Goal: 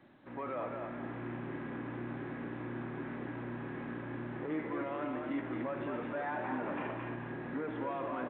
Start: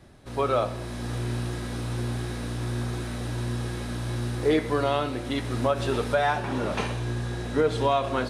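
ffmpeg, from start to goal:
-filter_complex "[0:a]alimiter=limit=-21dB:level=0:latency=1:release=10,asoftclip=type=tanh:threshold=-24dB,highpass=240,equalizer=f=290:t=q:w=4:g=4,equalizer=f=430:t=q:w=4:g=-9,equalizer=f=680:t=q:w=4:g=-5,equalizer=f=1.3k:t=q:w=4:g=-4,lowpass=f=2.1k:w=0.5412,lowpass=f=2.1k:w=1.3066,asplit=2[a][b];[b]asplit=5[c][d][e][f][g];[c]adelay=220,afreqshift=36,volume=-5dB[h];[d]adelay=440,afreqshift=72,volume=-13.6dB[i];[e]adelay=660,afreqshift=108,volume=-22.3dB[j];[f]adelay=880,afreqshift=144,volume=-30.9dB[k];[g]adelay=1100,afreqshift=180,volume=-39.5dB[l];[h][i][j][k][l]amix=inputs=5:normalize=0[m];[a][m]amix=inputs=2:normalize=0,volume=-3.5dB" -ar 8000 -c:a pcm_alaw

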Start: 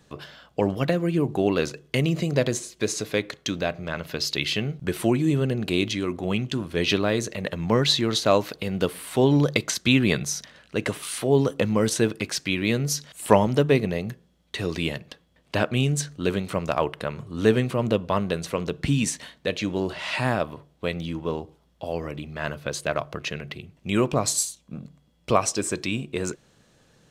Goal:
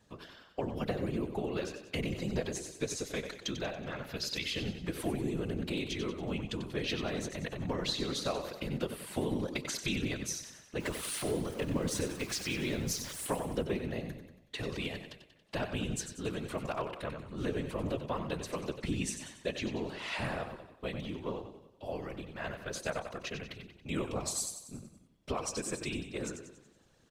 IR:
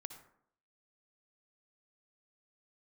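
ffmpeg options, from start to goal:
-filter_complex "[0:a]asettb=1/sr,asplit=3[a][b][c];[a]atrim=end=10.804[d];[b]atrim=start=10.8:end=13.27,asetpts=PTS-STARTPTS,afade=t=in:d=0.004:c=qsin,afade=t=out:st=2.466:d=0.004:c=qsin,aeval=exprs='val(0)+0.5*0.0266*sgn(val(0))':c=same[e];[c]atrim=start=13.266[f];[d][e]acrossfade=d=0.004:c1=hsin:c2=qsin[g];[g][f]acrossfade=d=0.004:c1=qsin:c2=hsin,acompressor=threshold=-21dB:ratio=6,aecho=1:1:93|186|279|372|465|558:0.355|0.181|0.0923|0.0471|0.024|0.0122,afftfilt=real='hypot(re,im)*cos(2*PI*random(0))':imag='hypot(re,im)*sin(2*PI*random(1))':win_size=512:overlap=0.75,volume=-3dB"

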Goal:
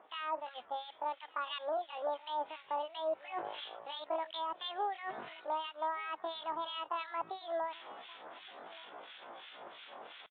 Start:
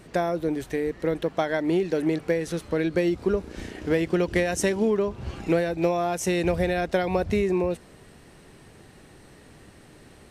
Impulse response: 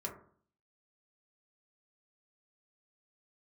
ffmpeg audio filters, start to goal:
-filter_complex "[0:a]highpass=420,areverse,acompressor=threshold=-43dB:ratio=5,areverse,asetrate=80880,aresample=44100,atempo=0.545254,acrossover=split=1600[a][b];[a]aeval=exprs='val(0)*(1-1/2+1/2*cos(2*PI*2.9*n/s))':c=same[c];[b]aeval=exprs='val(0)*(1-1/2-1/2*cos(2*PI*2.9*n/s))':c=same[d];[c][d]amix=inputs=2:normalize=0,asplit=2[e][f];[f]aecho=0:1:1173:0.0841[g];[e][g]amix=inputs=2:normalize=0,aresample=8000,aresample=44100,volume=10dB"

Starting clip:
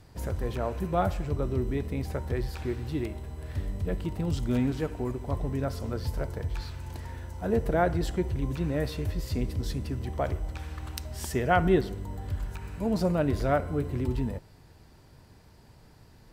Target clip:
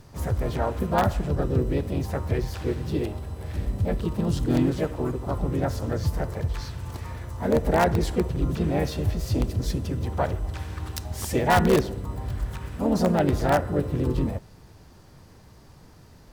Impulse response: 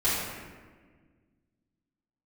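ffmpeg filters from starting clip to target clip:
-filter_complex "[0:a]bandreject=f=2.2k:w=5.7,asplit=3[a][b][c];[b]asetrate=52444,aresample=44100,atempo=0.840896,volume=-6dB[d];[c]asetrate=58866,aresample=44100,atempo=0.749154,volume=-6dB[e];[a][d][e]amix=inputs=3:normalize=0,asplit=2[f][g];[g]aeval=exprs='(mod(5.01*val(0)+1,2)-1)/5.01':c=same,volume=-8.5dB[h];[f][h]amix=inputs=2:normalize=0"

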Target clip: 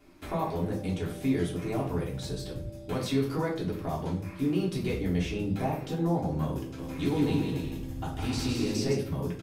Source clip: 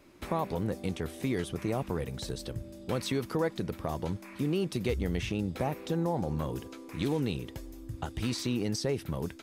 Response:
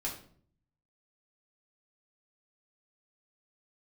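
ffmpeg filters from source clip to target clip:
-filter_complex "[0:a]asplit=3[a][b][c];[a]afade=t=out:st=6.77:d=0.02[d];[b]aecho=1:1:160|272|350.4|405.3|443.7:0.631|0.398|0.251|0.158|0.1,afade=t=in:st=6.77:d=0.02,afade=t=out:st=8.93:d=0.02[e];[c]afade=t=in:st=8.93:d=0.02[f];[d][e][f]amix=inputs=3:normalize=0[g];[1:a]atrim=start_sample=2205[h];[g][h]afir=irnorm=-1:irlink=0,volume=-1.5dB"

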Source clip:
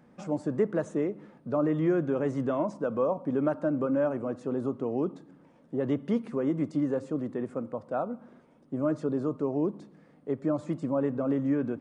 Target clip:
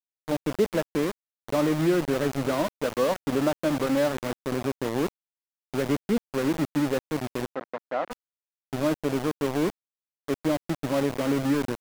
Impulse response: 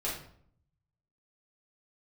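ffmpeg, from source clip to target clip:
-filter_complex "[0:a]asplit=2[a][b];[b]adelay=641.4,volume=-25dB,highshelf=f=4k:g=-14.4[c];[a][c]amix=inputs=2:normalize=0,aeval=exprs='val(0)*gte(abs(val(0)),0.0335)':c=same,asplit=3[d][e][f];[d]afade=t=out:st=7.47:d=0.02[g];[e]highpass=280,lowpass=2k,afade=t=in:st=7.47:d=0.02,afade=t=out:st=8.1:d=0.02[h];[f]afade=t=in:st=8.1:d=0.02[i];[g][h][i]amix=inputs=3:normalize=0,volume=3dB"

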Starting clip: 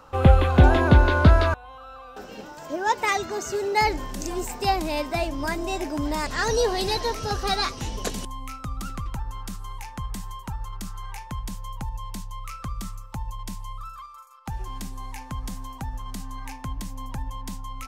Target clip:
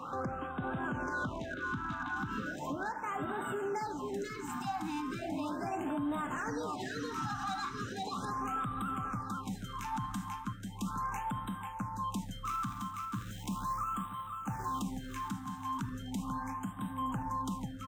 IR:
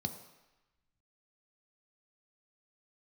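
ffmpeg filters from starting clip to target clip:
-filter_complex "[0:a]bass=f=250:g=-6,treble=f=4k:g=-2,asplit=3[a][b][c];[a]afade=t=out:st=12.44:d=0.02[d];[b]acrusher=bits=2:mode=log:mix=0:aa=0.000001,afade=t=in:st=12.44:d=0.02,afade=t=out:st=14.8:d=0.02[e];[c]afade=t=in:st=14.8:d=0.02[f];[d][e][f]amix=inputs=3:normalize=0,tremolo=f=0.81:d=0.87,aecho=1:1:490|980|1470|1960|2450:0.316|0.136|0.0585|0.0251|0.0108,acompressor=threshold=-38dB:ratio=6,equalizer=f=400:t=o:w=0.67:g=-10,equalizer=f=1.6k:t=o:w=0.67:g=7,equalizer=f=6.3k:t=o:w=0.67:g=-9,asoftclip=type=hard:threshold=-35dB[g];[1:a]atrim=start_sample=2205,asetrate=66150,aresample=44100[h];[g][h]afir=irnorm=-1:irlink=0,alimiter=level_in=11dB:limit=-24dB:level=0:latency=1:release=95,volume=-11dB,afftfilt=real='re*(1-between(b*sr/1024,470*pow(5600/470,0.5+0.5*sin(2*PI*0.37*pts/sr))/1.41,470*pow(5600/470,0.5+0.5*sin(2*PI*0.37*pts/sr))*1.41))':imag='im*(1-between(b*sr/1024,470*pow(5600/470,0.5+0.5*sin(2*PI*0.37*pts/sr))/1.41,470*pow(5600/470,0.5+0.5*sin(2*PI*0.37*pts/sr))*1.41))':win_size=1024:overlap=0.75,volume=7.5dB"

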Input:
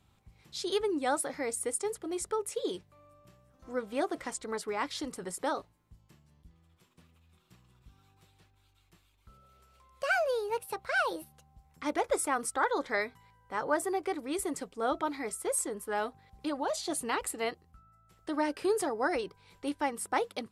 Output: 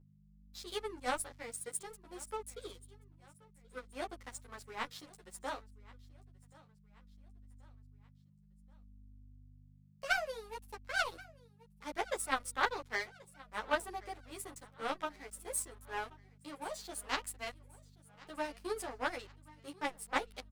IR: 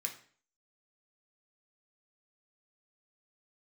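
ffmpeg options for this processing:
-filter_complex "[0:a]lowshelf=f=390:g=-10,aeval=exprs='0.15*(cos(1*acos(clip(val(0)/0.15,-1,1)))-cos(1*PI/2))+0.0376*(cos(3*acos(clip(val(0)/0.15,-1,1)))-cos(3*PI/2))':c=same,aeval=exprs='sgn(val(0))*max(abs(val(0))-0.00158,0)':c=same,aecho=1:1:1080|2160|3240:0.0794|0.0373|0.0175,aeval=exprs='val(0)+0.000794*(sin(2*PI*50*n/s)+sin(2*PI*2*50*n/s)/2+sin(2*PI*3*50*n/s)/3+sin(2*PI*4*50*n/s)/4+sin(2*PI*5*50*n/s)/5)':c=same,asplit=2[a][b];[b]adelay=10.5,afreqshift=-0.61[c];[a][c]amix=inputs=2:normalize=1,volume=7.5dB"

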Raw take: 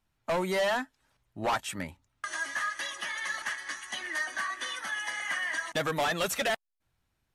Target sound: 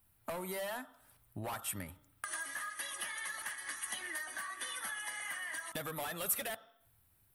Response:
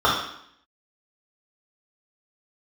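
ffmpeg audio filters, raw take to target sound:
-filter_complex "[0:a]equalizer=f=100:w=2.8:g=8.5,acompressor=threshold=-42dB:ratio=6,aexciter=amount=8.6:drive=4.7:freq=9k,asplit=2[a][b];[1:a]atrim=start_sample=2205,adelay=47[c];[b][c]afir=irnorm=-1:irlink=0,volume=-36dB[d];[a][d]amix=inputs=2:normalize=0,volume=1.5dB"

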